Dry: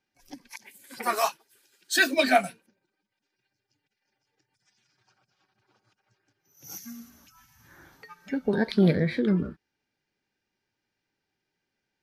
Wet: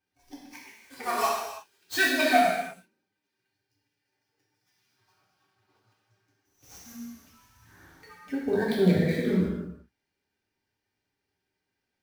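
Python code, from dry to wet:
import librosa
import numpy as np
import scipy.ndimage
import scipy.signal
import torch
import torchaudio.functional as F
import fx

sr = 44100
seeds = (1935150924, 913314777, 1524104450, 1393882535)

y = fx.dead_time(x, sr, dead_ms=0.05)
y = fx.peak_eq(y, sr, hz=65.0, db=5.5, octaves=0.93)
y = fx.rev_gated(y, sr, seeds[0], gate_ms=370, shape='falling', drr_db=-5.0)
y = y * 10.0 ** (-6.5 / 20.0)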